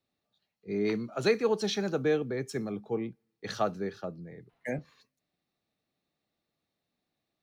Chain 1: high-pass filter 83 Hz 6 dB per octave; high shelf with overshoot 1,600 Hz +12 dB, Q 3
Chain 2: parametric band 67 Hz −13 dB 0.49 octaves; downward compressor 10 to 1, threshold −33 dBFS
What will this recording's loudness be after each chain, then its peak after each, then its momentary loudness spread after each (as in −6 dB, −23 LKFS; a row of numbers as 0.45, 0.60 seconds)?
−25.0, −39.5 LKFS; −4.0, −23.0 dBFS; 15, 8 LU